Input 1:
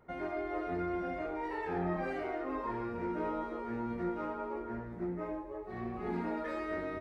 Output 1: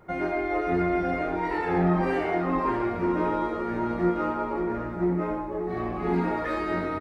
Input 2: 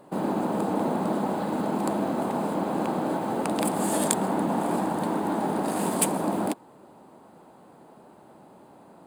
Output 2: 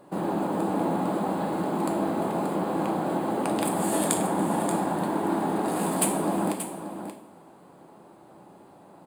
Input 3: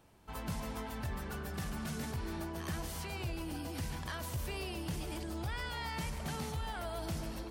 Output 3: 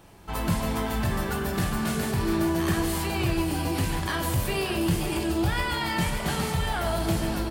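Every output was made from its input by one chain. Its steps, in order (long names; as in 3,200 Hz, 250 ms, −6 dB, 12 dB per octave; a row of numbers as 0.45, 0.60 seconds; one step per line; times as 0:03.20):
dynamic equaliser 5,700 Hz, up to −5 dB, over −59 dBFS, Q 2.8
single-tap delay 581 ms −10 dB
coupled-rooms reverb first 0.51 s, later 2 s, DRR 4 dB
loudness normalisation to −27 LKFS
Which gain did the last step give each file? +9.0, −1.5, +11.5 decibels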